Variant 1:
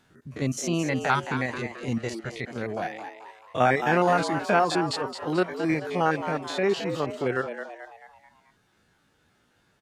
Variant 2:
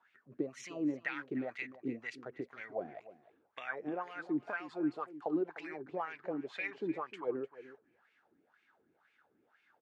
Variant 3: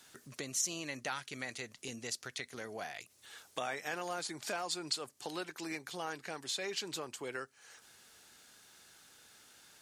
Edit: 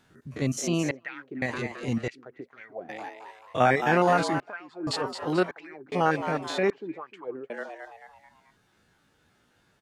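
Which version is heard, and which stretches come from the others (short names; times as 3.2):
1
0.91–1.42 from 2
2.08–2.89 from 2
4.4–4.87 from 2
5.51–5.92 from 2
6.7–7.5 from 2
not used: 3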